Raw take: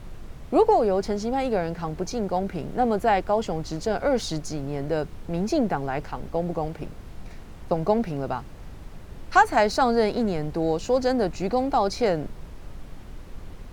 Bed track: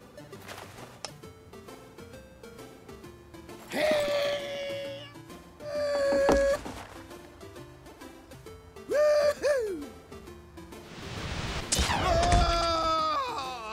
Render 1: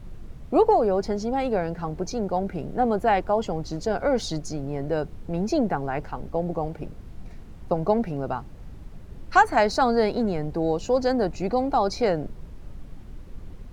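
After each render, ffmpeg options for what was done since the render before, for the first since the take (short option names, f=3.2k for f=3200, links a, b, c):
-af "afftdn=nr=7:nf=-42"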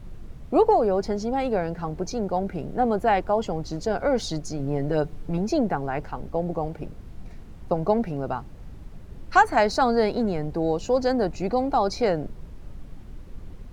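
-filter_complex "[0:a]asettb=1/sr,asplit=3[a][b][c];[a]atrim=end=4.594[d];[b]atrim=start=4.59:end=5.38,asetpts=PTS-STARTPTS,afade=t=in:d=0.004:c=qsin,afade=t=out:st=0.786:d=0.004:c=qsin,aecho=1:1:6.8:0.65,atrim=end_sample=34839[e];[c]atrim=start=5.376[f];[d][e]acrossfade=d=0.004:c1=hsin:c2=qsin[g];[g][f]acrossfade=d=0.004:c1=qsin:c2=hsin"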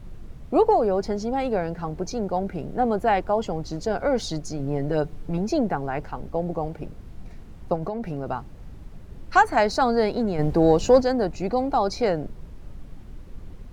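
-filter_complex "[0:a]asettb=1/sr,asplit=3[a][b][c];[a]atrim=end=7.754[d];[b]atrim=start=7.75:end=8.26,asetpts=PTS-STARTPTS,afade=t=in:d=0.004:c=qsin,afade=t=out:st=0.506:d=0.004:c=qsin,acompressor=threshold=-24dB:ratio=12:attack=3.2:release=140:knee=1:detection=peak[e];[c]atrim=start=8.256[f];[d][e]acrossfade=d=0.004:c1=hsin:c2=qsin[g];[g][f]acrossfade=d=0.004:c1=qsin:c2=hsin,asplit=3[h][i][j];[h]afade=t=out:st=10.38:d=0.02[k];[i]acontrast=88,afade=t=in:st=10.38:d=0.02,afade=t=out:st=11:d=0.02[l];[j]afade=t=in:st=11:d=0.02[m];[k][l][m]amix=inputs=3:normalize=0"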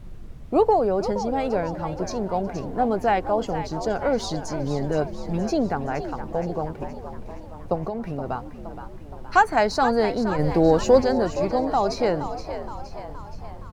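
-filter_complex "[0:a]asplit=7[a][b][c][d][e][f][g];[b]adelay=470,afreqshift=70,volume=-11dB[h];[c]adelay=940,afreqshift=140,volume=-16.4dB[i];[d]adelay=1410,afreqshift=210,volume=-21.7dB[j];[e]adelay=1880,afreqshift=280,volume=-27.1dB[k];[f]adelay=2350,afreqshift=350,volume=-32.4dB[l];[g]adelay=2820,afreqshift=420,volume=-37.8dB[m];[a][h][i][j][k][l][m]amix=inputs=7:normalize=0"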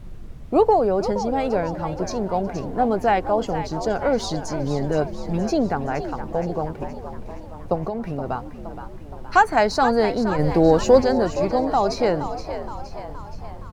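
-af "volume=2dB,alimiter=limit=-3dB:level=0:latency=1"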